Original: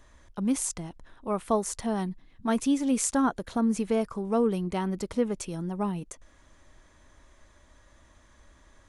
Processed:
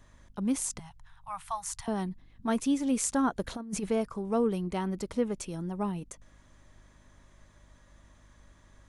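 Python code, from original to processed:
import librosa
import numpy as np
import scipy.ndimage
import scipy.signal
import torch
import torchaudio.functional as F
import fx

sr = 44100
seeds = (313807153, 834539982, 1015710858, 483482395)

y = fx.add_hum(x, sr, base_hz=50, snr_db=28)
y = fx.ellip_bandstop(y, sr, low_hz=140.0, high_hz=820.0, order=3, stop_db=40, at=(0.79, 1.88))
y = fx.over_compress(y, sr, threshold_db=-30.0, ratio=-0.5, at=(3.39, 3.89))
y = y * librosa.db_to_amplitude(-2.5)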